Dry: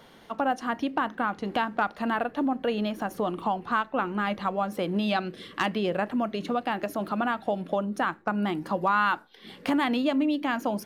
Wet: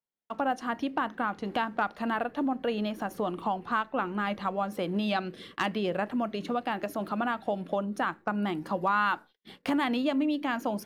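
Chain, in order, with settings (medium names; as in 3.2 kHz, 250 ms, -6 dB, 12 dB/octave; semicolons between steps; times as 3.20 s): gate -45 dBFS, range -45 dB; trim -2.5 dB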